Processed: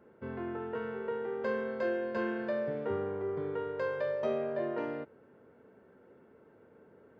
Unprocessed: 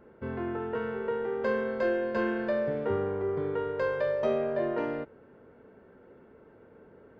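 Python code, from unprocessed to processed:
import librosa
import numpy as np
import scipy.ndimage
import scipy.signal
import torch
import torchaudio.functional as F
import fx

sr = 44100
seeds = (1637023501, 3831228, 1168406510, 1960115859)

y = scipy.signal.sosfilt(scipy.signal.butter(2, 89.0, 'highpass', fs=sr, output='sos'), x)
y = F.gain(torch.from_numpy(y), -4.5).numpy()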